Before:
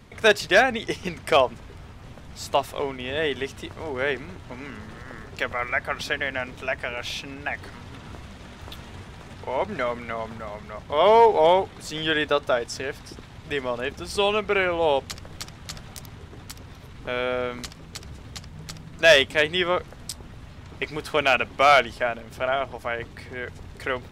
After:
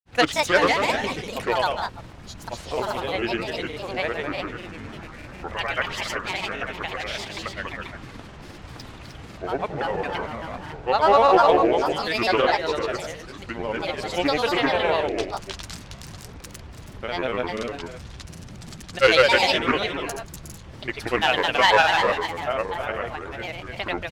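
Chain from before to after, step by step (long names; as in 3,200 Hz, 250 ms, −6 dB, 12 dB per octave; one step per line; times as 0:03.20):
bouncing-ball delay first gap 200 ms, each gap 0.6×, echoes 5
granular cloud, pitch spread up and down by 7 semitones
highs frequency-modulated by the lows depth 0.14 ms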